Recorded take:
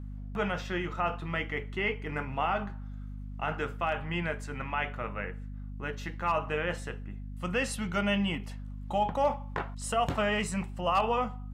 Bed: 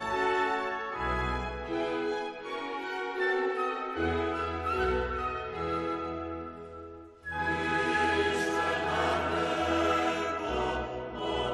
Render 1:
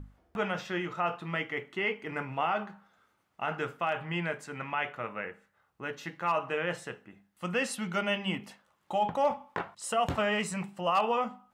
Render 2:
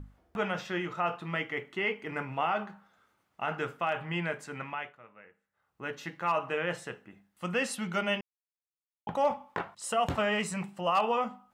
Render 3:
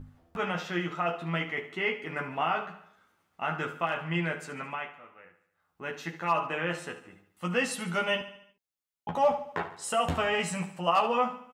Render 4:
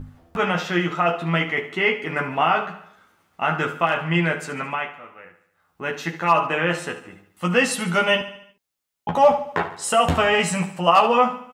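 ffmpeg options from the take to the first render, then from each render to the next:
-af "bandreject=f=50:t=h:w=6,bandreject=f=100:t=h:w=6,bandreject=f=150:t=h:w=6,bandreject=f=200:t=h:w=6,bandreject=f=250:t=h:w=6"
-filter_complex "[0:a]asplit=5[s0][s1][s2][s3][s4];[s0]atrim=end=4.97,asetpts=PTS-STARTPTS,afade=t=out:st=4.57:d=0.4:silence=0.141254[s5];[s1]atrim=start=4.97:end=5.47,asetpts=PTS-STARTPTS,volume=0.141[s6];[s2]atrim=start=5.47:end=8.21,asetpts=PTS-STARTPTS,afade=t=in:d=0.4:silence=0.141254,afade=t=out:st=2.736:d=0.004:c=hsin[s7];[s3]atrim=start=8.21:end=9.07,asetpts=PTS-STARTPTS,volume=0[s8];[s4]atrim=start=9.07,asetpts=PTS-STARTPTS,afade=t=in:d=0.004:c=hsin[s9];[s5][s6][s7][s8][s9]concat=n=5:v=0:a=1"
-filter_complex "[0:a]asplit=2[s0][s1];[s1]adelay=12,volume=0.708[s2];[s0][s2]amix=inputs=2:normalize=0,asplit=2[s3][s4];[s4]aecho=0:1:72|144|216|288|360:0.224|0.114|0.0582|0.0297|0.0151[s5];[s3][s5]amix=inputs=2:normalize=0"
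-af "volume=2.99"

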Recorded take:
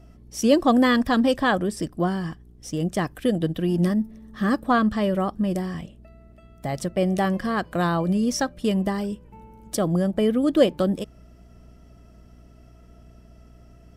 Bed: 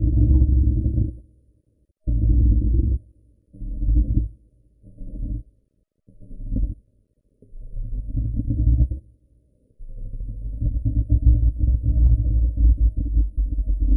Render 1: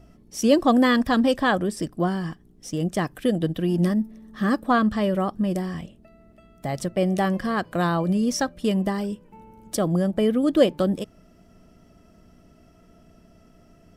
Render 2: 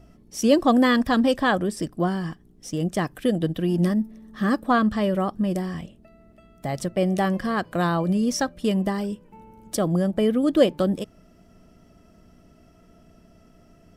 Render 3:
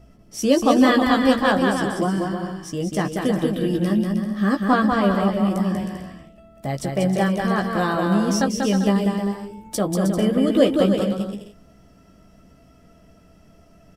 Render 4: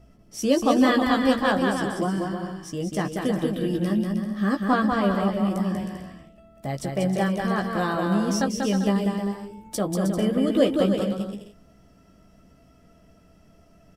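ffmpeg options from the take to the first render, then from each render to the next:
-af "bandreject=f=60:t=h:w=4,bandreject=f=120:t=h:w=4"
-af anull
-filter_complex "[0:a]asplit=2[s0][s1];[s1]adelay=15,volume=0.531[s2];[s0][s2]amix=inputs=2:normalize=0,asplit=2[s3][s4];[s4]aecho=0:1:190|313.5|393.8|446|479.9:0.631|0.398|0.251|0.158|0.1[s5];[s3][s5]amix=inputs=2:normalize=0"
-af "volume=0.668"

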